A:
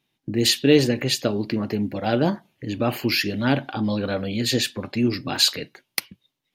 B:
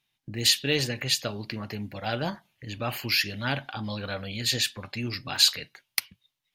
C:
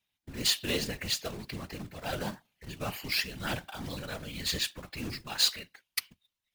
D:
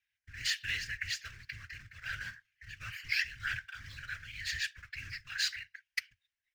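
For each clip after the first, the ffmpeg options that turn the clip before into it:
ffmpeg -i in.wav -af "equalizer=frequency=310:width=0.64:gain=-14,volume=-1dB" out.wav
ffmpeg -i in.wav -af "acrusher=bits=2:mode=log:mix=0:aa=0.000001,afftfilt=real='hypot(re,im)*cos(2*PI*random(0))':imag='hypot(re,im)*sin(2*PI*random(1))':win_size=512:overlap=0.75" out.wav
ffmpeg -i in.wav -af "firequalizer=gain_entry='entry(110,0);entry(180,-21);entry(480,-26);entry(820,-26);entry(1600,13);entry(3700,-4);entry(5400,2);entry(9900,-11)':delay=0.05:min_phase=1,volume=-6dB" out.wav

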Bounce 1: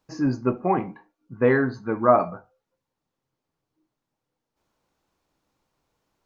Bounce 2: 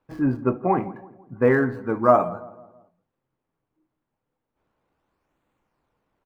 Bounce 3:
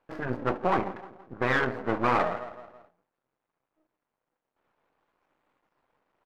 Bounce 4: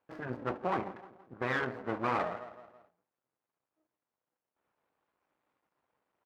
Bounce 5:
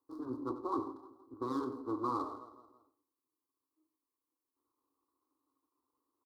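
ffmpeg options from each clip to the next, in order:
ffmpeg -i in.wav -filter_complex "[0:a]acrossover=split=3000[link_01][link_02];[link_02]acrusher=samples=39:mix=1:aa=0.000001:lfo=1:lforange=62.4:lforate=0.32[link_03];[link_01][link_03]amix=inputs=2:normalize=0,asplit=2[link_04][link_05];[link_05]adelay=165,lowpass=frequency=1400:poles=1,volume=-18dB,asplit=2[link_06][link_07];[link_07]adelay=165,lowpass=frequency=1400:poles=1,volume=0.5,asplit=2[link_08][link_09];[link_09]adelay=165,lowpass=frequency=1400:poles=1,volume=0.5,asplit=2[link_10][link_11];[link_11]adelay=165,lowpass=frequency=1400:poles=1,volume=0.5[link_12];[link_04][link_06][link_08][link_10][link_12]amix=inputs=5:normalize=0,volume=1dB" out.wav
ffmpeg -i in.wav -filter_complex "[0:a]afftfilt=real='re*lt(hypot(re,im),0.708)':imag='im*lt(hypot(re,im),0.708)':win_size=1024:overlap=0.75,aeval=exprs='max(val(0),0)':channel_layout=same,asplit=2[link_01][link_02];[link_02]highpass=frequency=720:poles=1,volume=14dB,asoftclip=type=tanh:threshold=-11dB[link_03];[link_01][link_03]amix=inputs=2:normalize=0,lowpass=frequency=1700:poles=1,volume=-6dB" out.wav
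ffmpeg -i in.wav -af "highpass=55,volume=-7dB" out.wav
ffmpeg -i in.wav -af "firequalizer=gain_entry='entry(120,0);entry(180,-27);entry(270,14);entry(640,-13);entry(1100,9);entry(1700,-27);entry(2600,-28);entry(4000,3);entry(6600,2);entry(10000,9)':delay=0.05:min_phase=1,aecho=1:1:92:0.224,volume=-6.5dB" out.wav

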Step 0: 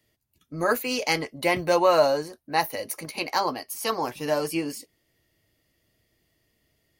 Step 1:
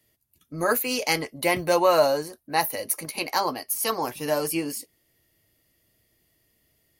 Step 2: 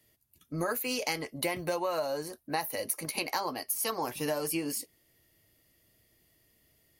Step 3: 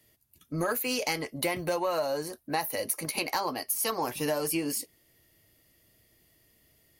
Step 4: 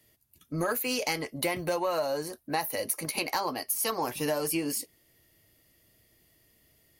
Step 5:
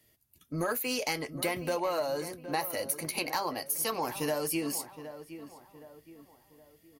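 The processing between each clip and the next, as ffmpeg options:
ffmpeg -i in.wav -af "equalizer=frequency=12000:width=1:gain=10" out.wav
ffmpeg -i in.wav -af "acompressor=threshold=-28dB:ratio=12" out.wav
ffmpeg -i in.wav -af "asoftclip=type=tanh:threshold=-19.5dB,volume=3dB" out.wav
ffmpeg -i in.wav -af anull out.wav
ffmpeg -i in.wav -filter_complex "[0:a]asplit=2[link_01][link_02];[link_02]adelay=767,lowpass=frequency=1800:poles=1,volume=-12dB,asplit=2[link_03][link_04];[link_04]adelay=767,lowpass=frequency=1800:poles=1,volume=0.43,asplit=2[link_05][link_06];[link_06]adelay=767,lowpass=frequency=1800:poles=1,volume=0.43,asplit=2[link_07][link_08];[link_08]adelay=767,lowpass=frequency=1800:poles=1,volume=0.43[link_09];[link_01][link_03][link_05][link_07][link_09]amix=inputs=5:normalize=0,volume=-2dB" out.wav

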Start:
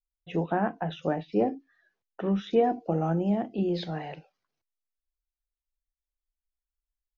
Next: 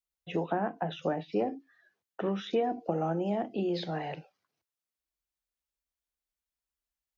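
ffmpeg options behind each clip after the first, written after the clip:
ffmpeg -i in.wav -filter_complex "[0:a]highpass=71,acrossover=split=300|790[link_01][link_02][link_03];[link_01]acompressor=threshold=-40dB:ratio=4[link_04];[link_02]acompressor=threshold=-32dB:ratio=4[link_05];[link_03]acompressor=threshold=-40dB:ratio=4[link_06];[link_04][link_05][link_06]amix=inputs=3:normalize=0,volume=2dB" out.wav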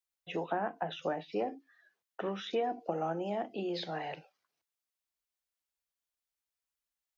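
ffmpeg -i in.wav -af "lowshelf=frequency=330:gain=-11" out.wav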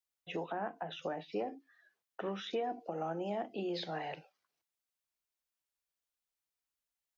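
ffmpeg -i in.wav -af "alimiter=level_in=2dB:limit=-24dB:level=0:latency=1:release=149,volume=-2dB,volume=-1.5dB" out.wav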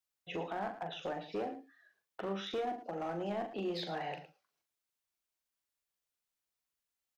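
ffmpeg -i in.wav -filter_complex "[0:a]asoftclip=type=hard:threshold=-32.5dB,asplit=2[link_01][link_02];[link_02]aecho=0:1:41|111:0.398|0.224[link_03];[link_01][link_03]amix=inputs=2:normalize=0" out.wav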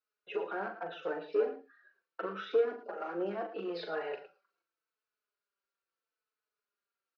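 ffmpeg -i in.wav -filter_complex "[0:a]highpass=frequency=230:width=0.5412,highpass=frequency=230:width=1.3066,equalizer=frequency=260:width_type=q:width=4:gain=-8,equalizer=frequency=430:width_type=q:width=4:gain=9,equalizer=frequency=780:width_type=q:width=4:gain=-6,equalizer=frequency=1400:width_type=q:width=4:gain=10,equalizer=frequency=2000:width_type=q:width=4:gain=-5,equalizer=frequency=3400:width_type=q:width=4:gain=-9,lowpass=frequency=4200:width=0.5412,lowpass=frequency=4200:width=1.3066,asplit=2[link_01][link_02];[link_02]adelay=4.2,afreqshift=-0.79[link_03];[link_01][link_03]amix=inputs=2:normalize=1,volume=4.5dB" out.wav

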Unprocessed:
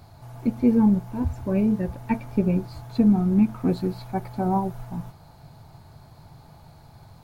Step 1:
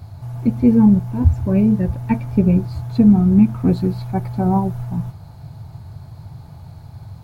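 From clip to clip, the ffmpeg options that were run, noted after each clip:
ffmpeg -i in.wav -af "equalizer=frequency=95:width=0.87:gain=13,volume=2.5dB" out.wav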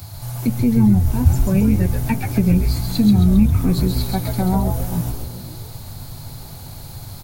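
ffmpeg -i in.wav -filter_complex "[0:a]crystalizer=i=8:c=0,acrossover=split=210[link_01][link_02];[link_02]acompressor=threshold=-23dB:ratio=4[link_03];[link_01][link_03]amix=inputs=2:normalize=0,asplit=7[link_04][link_05][link_06][link_07][link_08][link_09][link_10];[link_05]adelay=134,afreqshift=-120,volume=-4dB[link_11];[link_06]adelay=268,afreqshift=-240,volume=-10.4dB[link_12];[link_07]adelay=402,afreqshift=-360,volume=-16.8dB[link_13];[link_08]adelay=536,afreqshift=-480,volume=-23.1dB[link_14];[link_09]adelay=670,afreqshift=-600,volume=-29.5dB[link_15];[link_10]adelay=804,afreqshift=-720,volume=-35.9dB[link_16];[link_04][link_11][link_12][link_13][link_14][link_15][link_16]amix=inputs=7:normalize=0" out.wav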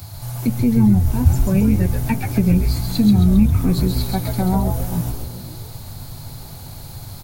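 ffmpeg -i in.wav -af anull out.wav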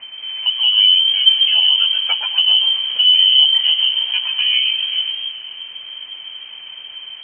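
ffmpeg -i in.wav -af "acrusher=bits=6:mix=0:aa=0.000001,lowpass=frequency=2700:width_type=q:width=0.5098,lowpass=frequency=2700:width_type=q:width=0.6013,lowpass=frequency=2700:width_type=q:width=0.9,lowpass=frequency=2700:width_type=q:width=2.563,afreqshift=-3200,volume=1dB" out.wav

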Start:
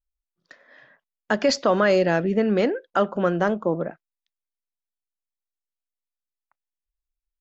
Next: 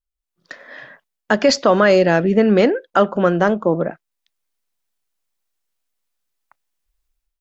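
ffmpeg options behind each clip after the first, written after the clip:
ffmpeg -i in.wav -af "dynaudnorm=framelen=160:gausssize=5:maxgain=15dB,volume=-1dB" out.wav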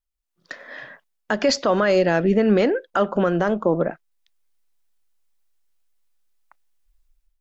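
ffmpeg -i in.wav -af "asubboost=boost=3.5:cutoff=51,alimiter=limit=-9dB:level=0:latency=1:release=133" out.wav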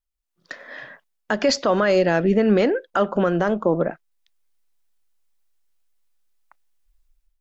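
ffmpeg -i in.wav -af anull out.wav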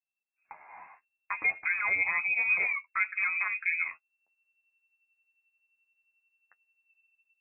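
ffmpeg -i in.wav -af "lowpass=frequency=2300:width_type=q:width=0.5098,lowpass=frequency=2300:width_type=q:width=0.6013,lowpass=frequency=2300:width_type=q:width=0.9,lowpass=frequency=2300:width_type=q:width=2.563,afreqshift=-2700,flanger=delay=8.9:depth=3.3:regen=24:speed=0.63:shape=triangular,volume=-7dB" out.wav

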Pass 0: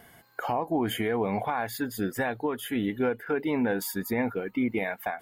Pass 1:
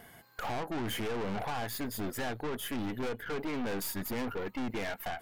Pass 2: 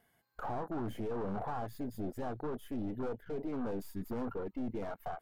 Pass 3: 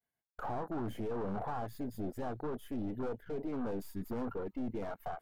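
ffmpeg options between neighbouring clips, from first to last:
ffmpeg -i in.wav -af "aeval=exprs='(tanh(63.1*val(0)+0.65)-tanh(0.65))/63.1':channel_layout=same,volume=3dB" out.wav
ffmpeg -i in.wav -af "afwtdn=0.0158,volume=-2dB" out.wav
ffmpeg -i in.wav -af "agate=range=-33dB:threshold=-60dB:ratio=3:detection=peak" out.wav

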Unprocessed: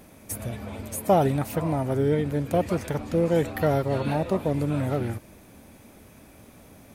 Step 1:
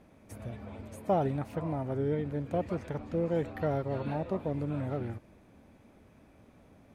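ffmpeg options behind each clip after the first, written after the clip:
ffmpeg -i in.wav -af "aemphasis=mode=reproduction:type=75fm,volume=-8.5dB" out.wav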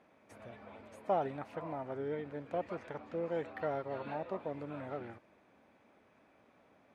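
ffmpeg -i in.wav -af "bandpass=frequency=1400:width_type=q:width=0.5:csg=0,volume=-1dB" out.wav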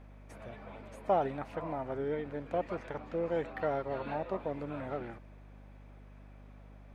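ffmpeg -i in.wav -af "aeval=exprs='val(0)+0.00178*(sin(2*PI*50*n/s)+sin(2*PI*2*50*n/s)/2+sin(2*PI*3*50*n/s)/3+sin(2*PI*4*50*n/s)/4+sin(2*PI*5*50*n/s)/5)':channel_layout=same,volume=3.5dB" out.wav

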